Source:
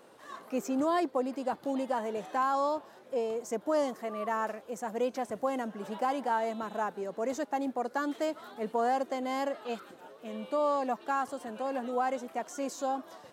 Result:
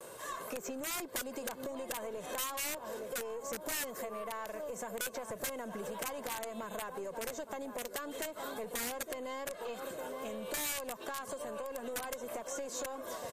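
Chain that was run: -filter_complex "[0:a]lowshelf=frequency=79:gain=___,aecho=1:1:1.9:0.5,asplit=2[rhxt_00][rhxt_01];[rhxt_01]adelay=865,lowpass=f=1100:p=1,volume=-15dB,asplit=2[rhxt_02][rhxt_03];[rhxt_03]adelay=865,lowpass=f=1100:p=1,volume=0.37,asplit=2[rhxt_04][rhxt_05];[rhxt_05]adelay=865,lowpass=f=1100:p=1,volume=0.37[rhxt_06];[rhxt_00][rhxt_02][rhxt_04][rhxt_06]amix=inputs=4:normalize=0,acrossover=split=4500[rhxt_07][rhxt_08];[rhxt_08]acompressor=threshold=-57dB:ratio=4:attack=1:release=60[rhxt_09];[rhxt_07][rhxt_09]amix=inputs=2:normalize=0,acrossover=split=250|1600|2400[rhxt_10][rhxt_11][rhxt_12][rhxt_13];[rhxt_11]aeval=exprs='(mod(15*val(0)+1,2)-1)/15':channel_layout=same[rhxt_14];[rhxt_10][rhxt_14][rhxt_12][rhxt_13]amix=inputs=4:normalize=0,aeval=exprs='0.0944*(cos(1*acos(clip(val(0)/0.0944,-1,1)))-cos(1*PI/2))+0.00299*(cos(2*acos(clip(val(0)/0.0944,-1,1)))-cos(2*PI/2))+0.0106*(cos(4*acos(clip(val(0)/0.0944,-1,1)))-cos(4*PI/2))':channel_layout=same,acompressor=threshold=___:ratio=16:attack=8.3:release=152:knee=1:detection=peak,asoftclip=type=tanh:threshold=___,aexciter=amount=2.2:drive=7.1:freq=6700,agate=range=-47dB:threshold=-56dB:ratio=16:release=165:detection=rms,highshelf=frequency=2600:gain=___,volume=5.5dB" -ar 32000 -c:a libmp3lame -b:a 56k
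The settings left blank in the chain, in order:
9, -42dB, -35.5dB, 3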